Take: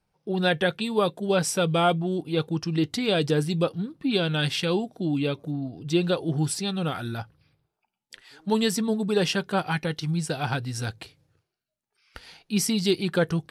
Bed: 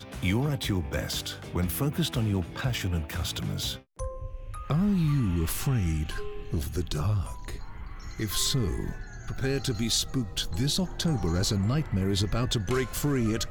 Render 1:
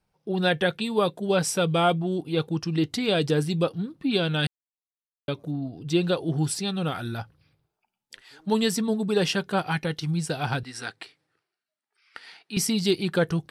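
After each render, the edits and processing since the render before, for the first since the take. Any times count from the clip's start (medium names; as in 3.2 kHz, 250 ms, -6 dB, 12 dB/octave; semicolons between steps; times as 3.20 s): 4.47–5.28 s: mute; 10.63–12.57 s: cabinet simulation 330–9800 Hz, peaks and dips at 530 Hz -7 dB, 1.3 kHz +3 dB, 1.9 kHz +6 dB, 6.6 kHz -8 dB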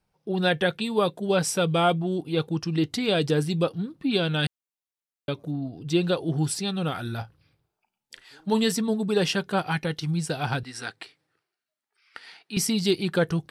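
7.04–8.72 s: doubling 36 ms -13.5 dB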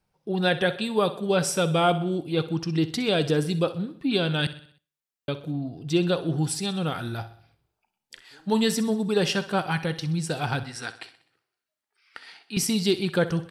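feedback delay 63 ms, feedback 51%, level -15 dB; Schroeder reverb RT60 0.4 s, combs from 33 ms, DRR 20 dB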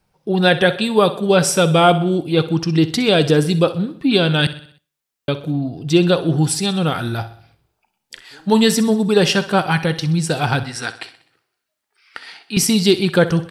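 trim +9 dB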